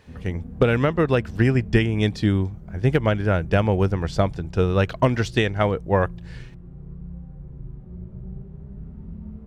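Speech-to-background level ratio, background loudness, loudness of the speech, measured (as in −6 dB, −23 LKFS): 17.5 dB, −39.5 LKFS, −22.0 LKFS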